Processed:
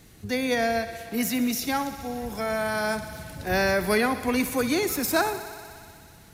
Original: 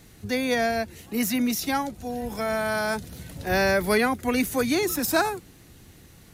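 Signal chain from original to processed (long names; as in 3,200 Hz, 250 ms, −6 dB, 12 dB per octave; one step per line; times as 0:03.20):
feedback echo with a high-pass in the loop 61 ms, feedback 85%, high-pass 180 Hz, level −15 dB
level −1 dB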